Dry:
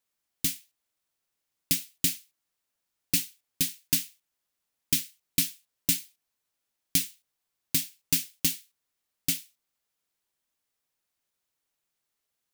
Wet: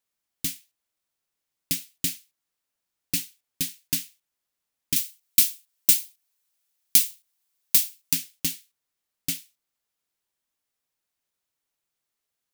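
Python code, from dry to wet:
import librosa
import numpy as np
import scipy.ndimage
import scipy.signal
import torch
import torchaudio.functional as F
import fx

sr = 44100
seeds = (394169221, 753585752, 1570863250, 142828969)

y = fx.tilt_eq(x, sr, slope=2.5, at=(4.96, 8.13))
y = y * 10.0 ** (-1.0 / 20.0)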